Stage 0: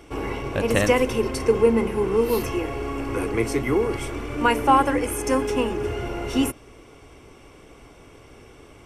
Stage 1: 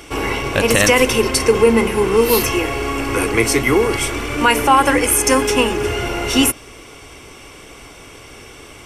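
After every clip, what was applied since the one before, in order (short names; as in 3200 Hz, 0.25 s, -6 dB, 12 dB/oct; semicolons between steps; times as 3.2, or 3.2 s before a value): tilt shelf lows -5.5 dB, about 1400 Hz; maximiser +12 dB; gain -1 dB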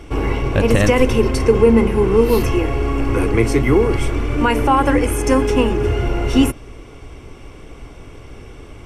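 tilt -3 dB/oct; gain -3.5 dB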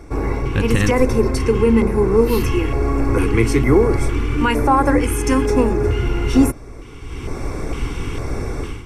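AGC gain up to 15 dB; LFO notch square 1.1 Hz 620–3000 Hz; gain -1.5 dB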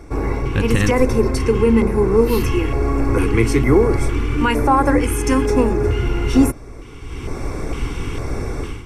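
nothing audible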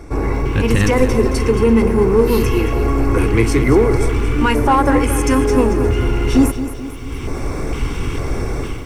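in parallel at -4 dB: soft clip -17.5 dBFS, distortion -8 dB; on the sum: lo-fi delay 0.223 s, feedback 55%, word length 7-bit, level -11 dB; gain -1 dB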